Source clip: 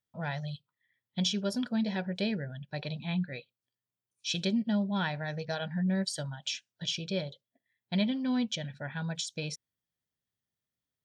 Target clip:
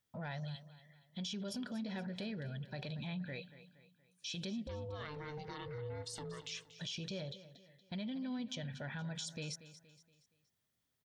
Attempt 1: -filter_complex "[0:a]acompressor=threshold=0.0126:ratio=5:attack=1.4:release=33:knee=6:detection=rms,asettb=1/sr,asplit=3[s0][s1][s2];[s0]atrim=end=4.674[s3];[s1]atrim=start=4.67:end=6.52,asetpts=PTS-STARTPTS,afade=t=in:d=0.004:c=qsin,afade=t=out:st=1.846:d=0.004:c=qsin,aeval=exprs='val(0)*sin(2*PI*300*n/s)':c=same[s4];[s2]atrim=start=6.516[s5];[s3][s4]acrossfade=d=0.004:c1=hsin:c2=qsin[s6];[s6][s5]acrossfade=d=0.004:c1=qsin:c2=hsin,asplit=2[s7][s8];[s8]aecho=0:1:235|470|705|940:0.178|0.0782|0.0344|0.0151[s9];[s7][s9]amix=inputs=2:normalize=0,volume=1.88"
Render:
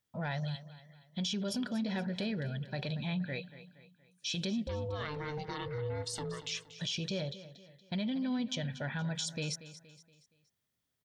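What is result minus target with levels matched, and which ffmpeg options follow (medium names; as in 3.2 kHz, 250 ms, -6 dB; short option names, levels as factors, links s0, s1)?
compression: peak gain reduction -7 dB
-filter_complex "[0:a]acompressor=threshold=0.00473:ratio=5:attack=1.4:release=33:knee=6:detection=rms,asettb=1/sr,asplit=3[s0][s1][s2];[s0]atrim=end=4.674[s3];[s1]atrim=start=4.67:end=6.52,asetpts=PTS-STARTPTS,afade=t=in:d=0.004:c=qsin,afade=t=out:st=1.846:d=0.004:c=qsin,aeval=exprs='val(0)*sin(2*PI*300*n/s)':c=same[s4];[s2]atrim=start=6.516[s5];[s3][s4]acrossfade=d=0.004:c1=hsin:c2=qsin[s6];[s6][s5]acrossfade=d=0.004:c1=qsin:c2=hsin,asplit=2[s7][s8];[s8]aecho=0:1:235|470|705|940:0.178|0.0782|0.0344|0.0151[s9];[s7][s9]amix=inputs=2:normalize=0,volume=1.88"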